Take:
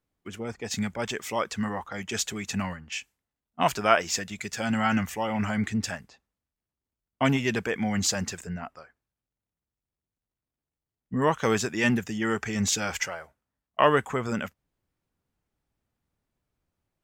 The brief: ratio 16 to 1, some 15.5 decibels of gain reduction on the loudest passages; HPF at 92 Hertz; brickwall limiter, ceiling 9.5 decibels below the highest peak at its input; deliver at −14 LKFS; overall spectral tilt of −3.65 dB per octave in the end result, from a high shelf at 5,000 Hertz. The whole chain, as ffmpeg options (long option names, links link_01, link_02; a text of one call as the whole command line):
ffmpeg -i in.wav -af "highpass=92,highshelf=frequency=5000:gain=8.5,acompressor=threshold=-29dB:ratio=16,volume=22.5dB,alimiter=limit=-2dB:level=0:latency=1" out.wav